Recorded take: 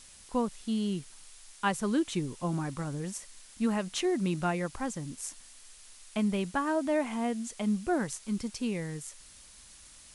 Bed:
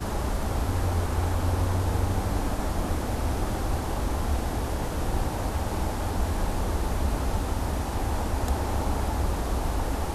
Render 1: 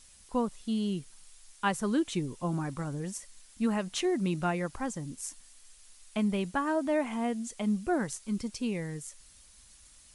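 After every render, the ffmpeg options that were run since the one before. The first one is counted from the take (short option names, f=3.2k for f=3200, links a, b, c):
-af "afftdn=nr=6:nf=-54"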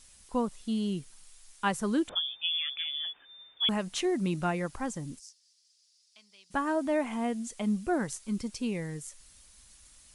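-filter_complex "[0:a]asettb=1/sr,asplit=3[a][b][c];[a]atrim=end=2.094[d];[b]atrim=start=2.09:end=3.69,asetpts=PTS-STARTPTS,afade=t=in:d=0.004:c=qsin,afade=t=out:st=1.596:d=0.004:c=qsin,lowpass=f=3.1k:t=q:w=0.5098,lowpass=f=3.1k:t=q:w=0.6013,lowpass=f=3.1k:t=q:w=0.9,lowpass=f=3.1k:t=q:w=2.563,afreqshift=-3600[e];[c]atrim=start=3.686[f];[d][e]acrossfade=d=0.004:c1=hsin:c2=qsin[g];[g][f]acrossfade=d=0.004:c1=qsin:c2=hsin,asplit=3[h][i][j];[h]afade=t=out:st=5.18:d=0.02[k];[i]bandpass=f=5k:t=q:w=4.7,afade=t=in:st=5.18:d=0.02,afade=t=out:st=6.5:d=0.02[l];[j]afade=t=in:st=6.5:d=0.02[m];[k][l][m]amix=inputs=3:normalize=0"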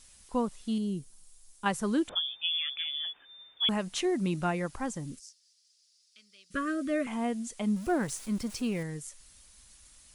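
-filter_complex "[0:a]asettb=1/sr,asplit=3[a][b][c];[a]atrim=end=0.784[d];[b]atrim=start=0.78:end=1.66,asetpts=PTS-STARTPTS,afade=t=in:d=0.004:c=qsin,afade=t=out:st=0.876:d=0.004:c=qsin,equalizer=f=2k:w=0.46:g=-11.5[e];[c]atrim=start=1.656[f];[d][e]acrossfade=d=0.004:c1=hsin:c2=qsin[g];[g][f]acrossfade=d=0.004:c1=qsin:c2=hsin,asettb=1/sr,asplit=3[h][i][j];[h]atrim=end=5.124[k];[i]atrim=start=5.12:end=7.07,asetpts=PTS-STARTPTS,afade=t=in:d=0.004:c=qsin,afade=t=out:st=1.946:d=0.004:c=qsin,asuperstop=centerf=830:order=20:qfactor=1.6[l];[j]atrim=start=7.066[m];[k][l]acrossfade=d=0.004:c1=hsin:c2=qsin[n];[n][m]acrossfade=d=0.004:c1=qsin:c2=hsin,asettb=1/sr,asplit=3[o][p][q];[o]atrim=end=7.764[r];[p]atrim=start=7.76:end=8.83,asetpts=PTS-STARTPTS,afade=t=in:d=0.004:c=qsin,afade=t=out:st=1.066:d=0.004:c=qsin,aeval=exprs='val(0)+0.5*0.00708*sgn(val(0))':c=same[s];[q]atrim=start=8.826[t];[r][s]acrossfade=d=0.004:c1=hsin:c2=qsin[u];[u][t]acrossfade=d=0.004:c1=qsin:c2=hsin"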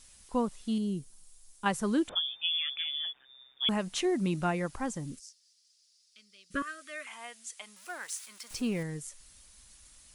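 -filter_complex "[0:a]asplit=3[a][b][c];[a]afade=t=out:st=3.11:d=0.02[d];[b]tremolo=f=130:d=0.889,afade=t=in:st=3.11:d=0.02,afade=t=out:st=3.65:d=0.02[e];[c]afade=t=in:st=3.65:d=0.02[f];[d][e][f]amix=inputs=3:normalize=0,asettb=1/sr,asplit=3[g][h][i];[g]atrim=end=6.624[j];[h]atrim=start=6.62:end=8.51,asetpts=PTS-STARTPTS,afade=t=in:d=0.004:c=qsin,afade=t=out:st=1.886:d=0.004:c=qsin,highpass=1.4k[k];[i]atrim=start=8.506[l];[j][k]acrossfade=d=0.004:c1=hsin:c2=qsin[m];[m][l]acrossfade=d=0.004:c1=qsin:c2=hsin"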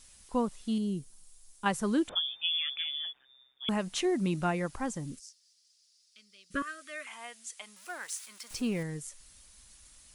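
-filter_complex "[0:a]asplit=2[a][b];[a]atrim=end=3.68,asetpts=PTS-STARTPTS,afade=t=out:st=2.81:d=0.87:silence=0.266073[c];[b]atrim=start=3.68,asetpts=PTS-STARTPTS,afade=t=in:d=0.004:c=hsin:silence=0.266073[d];[c][d]concat=n=2:v=0:a=1"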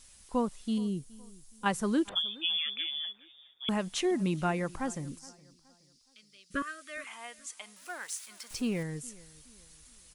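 -filter_complex "[0:a]asplit=2[a][b];[b]adelay=420,lowpass=f=4.2k:p=1,volume=-22dB,asplit=2[c][d];[d]adelay=420,lowpass=f=4.2k:p=1,volume=0.37,asplit=2[e][f];[f]adelay=420,lowpass=f=4.2k:p=1,volume=0.37[g];[a][c][e][g]amix=inputs=4:normalize=0"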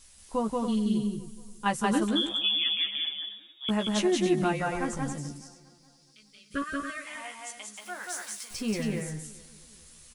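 -filter_complex "[0:a]asplit=2[a][b];[b]adelay=14,volume=-4.5dB[c];[a][c]amix=inputs=2:normalize=0,asplit=2[d][e];[e]aecho=0:1:180.8|277:0.794|0.355[f];[d][f]amix=inputs=2:normalize=0"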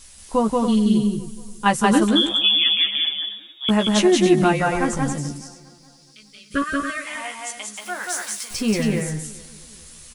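-af "volume=9.5dB"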